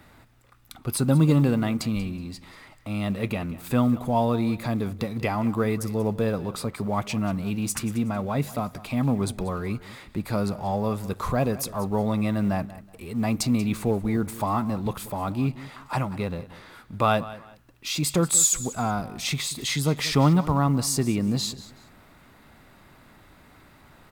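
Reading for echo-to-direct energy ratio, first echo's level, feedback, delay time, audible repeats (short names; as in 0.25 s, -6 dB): -16.5 dB, -17.0 dB, 26%, 0.186 s, 2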